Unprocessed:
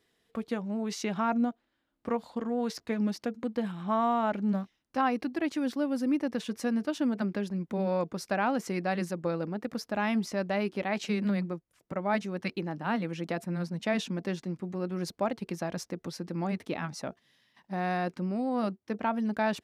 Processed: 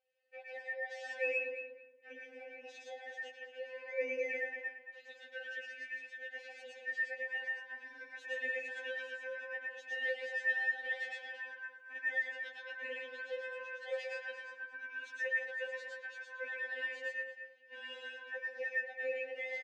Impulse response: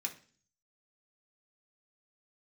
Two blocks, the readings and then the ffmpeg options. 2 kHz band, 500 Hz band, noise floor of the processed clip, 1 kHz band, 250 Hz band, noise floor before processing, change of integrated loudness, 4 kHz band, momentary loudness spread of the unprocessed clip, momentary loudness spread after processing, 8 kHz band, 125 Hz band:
+3.5 dB, -9.0 dB, -59 dBFS, -22.0 dB, under -35 dB, -78 dBFS, -7.5 dB, -7.5 dB, 7 LU, 14 LU, under -15 dB, under -40 dB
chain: -filter_complex "[0:a]highpass=47,alimiter=level_in=1.06:limit=0.0631:level=0:latency=1:release=23,volume=0.944,aeval=exprs='val(0)*sin(2*PI*1200*n/s)':c=same,asplit=3[s0][s1][s2];[s0]bandpass=f=530:t=q:w=8,volume=1[s3];[s1]bandpass=f=1840:t=q:w=8,volume=0.501[s4];[s2]bandpass=f=2480:t=q:w=8,volume=0.355[s5];[s3][s4][s5]amix=inputs=3:normalize=0,equalizer=f=9100:t=o:w=2.1:g=14,adynamicsmooth=sensitivity=7.5:basefreq=5000,lowshelf=f=220:g=-4.5,dynaudnorm=f=170:g=3:m=1.58,asplit=2[s6][s7];[s7]adelay=225,lowpass=f=2200:p=1,volume=0.473,asplit=2[s8][s9];[s9]adelay=225,lowpass=f=2200:p=1,volume=0.23,asplit=2[s10][s11];[s11]adelay=225,lowpass=f=2200:p=1,volume=0.23[s12];[s6][s8][s10][s12]amix=inputs=4:normalize=0,asplit=2[s13][s14];[1:a]atrim=start_sample=2205,adelay=113[s15];[s14][s15]afir=irnorm=-1:irlink=0,volume=0.891[s16];[s13][s16]amix=inputs=2:normalize=0,afftfilt=real='re*3.46*eq(mod(b,12),0)':imag='im*3.46*eq(mod(b,12),0)':win_size=2048:overlap=0.75,volume=1.19"

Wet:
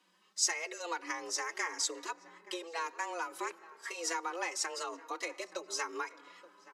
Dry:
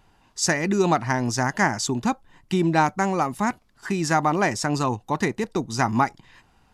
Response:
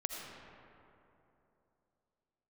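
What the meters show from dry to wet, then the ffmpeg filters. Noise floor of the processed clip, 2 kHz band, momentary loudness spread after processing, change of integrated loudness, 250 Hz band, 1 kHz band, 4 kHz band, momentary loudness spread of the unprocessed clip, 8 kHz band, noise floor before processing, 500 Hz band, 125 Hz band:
-68 dBFS, -11.5 dB, 12 LU, -13.5 dB, -25.5 dB, -15.5 dB, -6.0 dB, 7 LU, -5.5 dB, -61 dBFS, -16.0 dB, under -40 dB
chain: -filter_complex "[0:a]highshelf=f=8700:g=-10.5,afreqshift=170,asplit=2[s0][s1];[1:a]atrim=start_sample=2205[s2];[s1][s2]afir=irnorm=-1:irlink=0,volume=0.1[s3];[s0][s3]amix=inputs=2:normalize=0,acompressor=threshold=0.0708:ratio=3,highpass=f=630:p=1,highshelf=f=2400:g=11.5,asplit=2[s4][s5];[s5]adelay=874.6,volume=0.141,highshelf=f=4000:g=-19.7[s6];[s4][s6]amix=inputs=2:normalize=0,asplit=2[s7][s8];[s8]adelay=3.6,afreqshift=0.94[s9];[s7][s9]amix=inputs=2:normalize=1,volume=0.376"

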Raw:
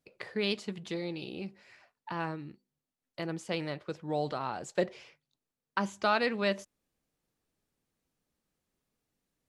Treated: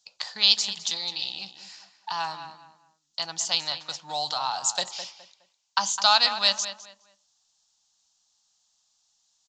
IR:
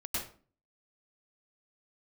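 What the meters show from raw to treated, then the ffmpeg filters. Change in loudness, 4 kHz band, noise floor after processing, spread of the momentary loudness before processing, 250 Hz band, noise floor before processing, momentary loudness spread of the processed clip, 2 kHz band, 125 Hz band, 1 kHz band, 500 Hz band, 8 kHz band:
+9.5 dB, +18.5 dB, -71 dBFS, 14 LU, -12.5 dB, under -85 dBFS, 20 LU, +4.0 dB, -11.0 dB, +7.5 dB, -5.5 dB, +23.0 dB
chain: -filter_complex "[0:a]lowshelf=f=590:t=q:w=3:g=-12,acrossover=split=750[s0][s1];[s1]aexciter=amount=12.2:drive=3.9:freq=3300[s2];[s0][s2]amix=inputs=2:normalize=0,asplit=2[s3][s4];[s4]adelay=208,lowpass=f=2700:p=1,volume=0.316,asplit=2[s5][s6];[s6]adelay=208,lowpass=f=2700:p=1,volume=0.29,asplit=2[s7][s8];[s8]adelay=208,lowpass=f=2700:p=1,volume=0.29[s9];[s3][s5][s7][s9]amix=inputs=4:normalize=0,aresample=16000,aresample=44100,volume=1.19"

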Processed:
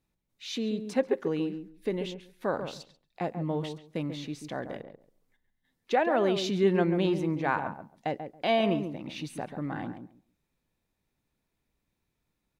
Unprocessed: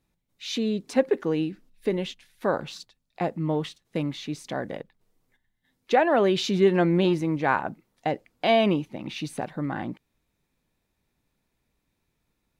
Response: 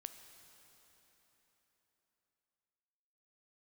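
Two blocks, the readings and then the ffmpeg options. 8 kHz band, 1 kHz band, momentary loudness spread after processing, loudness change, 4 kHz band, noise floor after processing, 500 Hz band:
-5.0 dB, -4.5 dB, 13 LU, -4.5 dB, -5.0 dB, -81 dBFS, -4.5 dB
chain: -filter_complex "[0:a]asplit=2[s0][s1];[s1]adelay=138,lowpass=f=1000:p=1,volume=0.447,asplit=2[s2][s3];[s3]adelay=138,lowpass=f=1000:p=1,volume=0.18,asplit=2[s4][s5];[s5]adelay=138,lowpass=f=1000:p=1,volume=0.18[s6];[s0][s2][s4][s6]amix=inputs=4:normalize=0,volume=0.562"

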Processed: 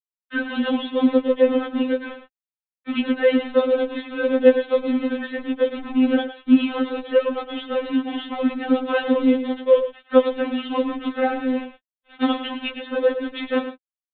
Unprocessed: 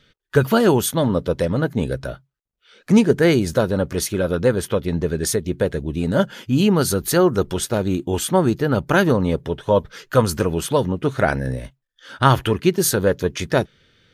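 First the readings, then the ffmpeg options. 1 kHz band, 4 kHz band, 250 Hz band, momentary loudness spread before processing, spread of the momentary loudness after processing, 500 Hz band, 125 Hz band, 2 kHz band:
-5.5 dB, -3.0 dB, -0.5 dB, 7 LU, 10 LU, -1.0 dB, under -30 dB, -3.0 dB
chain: -filter_complex "[0:a]acrossover=split=90|790|2000[s0][s1][s2][s3];[s0]acompressor=threshold=0.00501:ratio=4[s4];[s1]acompressor=threshold=0.158:ratio=4[s5];[s2]acompressor=threshold=0.0178:ratio=4[s6];[s3]acompressor=threshold=0.0355:ratio=4[s7];[s4][s5][s6][s7]amix=inputs=4:normalize=0,acrusher=bits=4:mix=0:aa=0.5,aecho=1:1:109:0.282,aresample=8000,aresample=44100,afftfilt=real='re*3.46*eq(mod(b,12),0)':imag='im*3.46*eq(mod(b,12),0)':win_size=2048:overlap=0.75,volume=1.41"

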